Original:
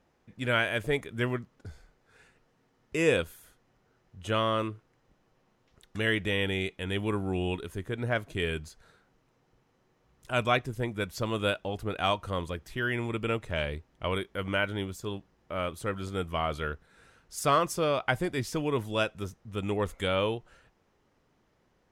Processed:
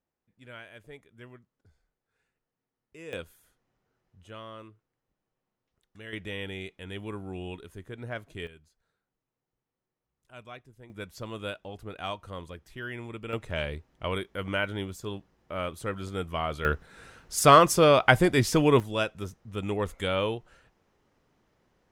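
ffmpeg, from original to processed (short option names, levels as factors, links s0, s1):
-af "asetnsamples=n=441:p=0,asendcmd='3.13 volume volume -9dB;4.24 volume volume -16dB;6.13 volume volume -7.5dB;8.47 volume volume -19.5dB;10.9 volume volume -7.5dB;13.33 volume volume -0.5dB;16.65 volume volume 8.5dB;18.8 volume volume 0dB',volume=0.112"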